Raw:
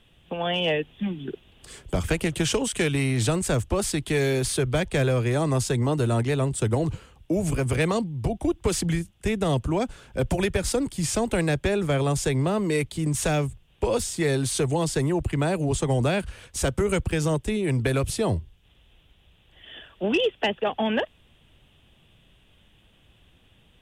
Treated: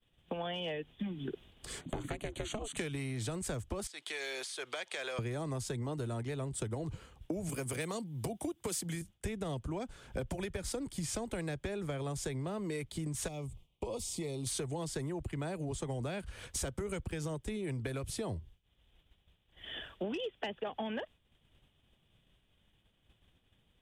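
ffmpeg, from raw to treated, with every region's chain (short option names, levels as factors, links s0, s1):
-filter_complex "[0:a]asettb=1/sr,asplit=3[s0][s1][s2];[s0]atrim=end=1.814[s3];[s1]atrim=start=1.81:end=2.77,asetpts=PTS-STARTPTS,afade=t=in:d=0.004:c=qsin,afade=t=out:st=0.956:d=0.004:c=qsin,highshelf=f=11000:g=-11,aeval=exprs='val(0)*sin(2*PI*210*n/s)':c=same,asuperstop=centerf=5200:order=8:qfactor=3.6[s4];[s2]atrim=start=2.766[s5];[s3][s4]acrossfade=d=0.004:c1=hsin:c2=qsin[s6];[s6][s5]acrossfade=d=0.004:c1=qsin:c2=hsin,asettb=1/sr,asplit=3[s7][s8][s9];[s7]atrim=end=3.874[s10];[s8]atrim=start=3.87:end=5.19,asetpts=PTS-STARTPTS,afade=t=in:d=0.004:c=qsin,afade=t=out:st=1.316:d=0.004:c=qsin,aemphasis=mode=production:type=riaa,acompressor=threshold=0.0355:ratio=12:attack=3.2:release=140:knee=1:detection=peak,highpass=550,lowpass=4200[s11];[s9]atrim=start=5.186[s12];[s10][s11]acrossfade=d=0.004:c1=hsin:c2=qsin[s13];[s13][s12]acrossfade=d=0.004:c1=qsin:c2=hsin,asettb=1/sr,asplit=3[s14][s15][s16];[s14]atrim=end=7.494[s17];[s15]atrim=start=7.49:end=9.02,asetpts=PTS-STARTPTS,afade=t=in:d=0.004:c=qsin,afade=t=out:st=1.526:d=0.004:c=qsin,highpass=140,aemphasis=mode=production:type=50kf[s18];[s16]atrim=start=9.016[s19];[s17][s18]acrossfade=d=0.004:c1=hsin:c2=qsin[s20];[s20][s19]acrossfade=d=0.004:c1=qsin:c2=hsin,asettb=1/sr,asplit=3[s21][s22][s23];[s21]atrim=end=13.284[s24];[s22]atrim=start=13.28:end=14.47,asetpts=PTS-STARTPTS,afade=t=in:d=0.004:c=qsin,afade=t=out:st=1.186:d=0.004:c=qsin,acompressor=threshold=0.00631:ratio=1.5:attack=3.2:release=140:knee=1:detection=peak,asuperstop=centerf=1600:order=4:qfactor=1.6[s25];[s23]atrim=start=14.466[s26];[s24][s25]acrossfade=d=0.004:c1=hsin:c2=qsin[s27];[s27][s26]acrossfade=d=0.004:c1=qsin:c2=hsin,acompressor=threshold=0.0178:ratio=10,agate=range=0.0224:threshold=0.00398:ratio=3:detection=peak,bandreject=f=2700:w=18"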